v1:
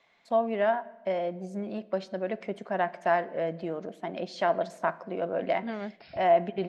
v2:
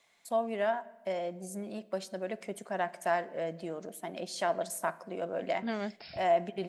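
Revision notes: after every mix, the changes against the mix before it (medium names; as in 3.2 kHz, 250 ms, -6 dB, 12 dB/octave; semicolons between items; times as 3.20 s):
first voice -5.5 dB; master: remove distance through air 210 m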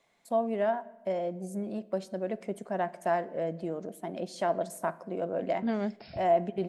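second voice: send +7.0 dB; master: add tilt shelf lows +6 dB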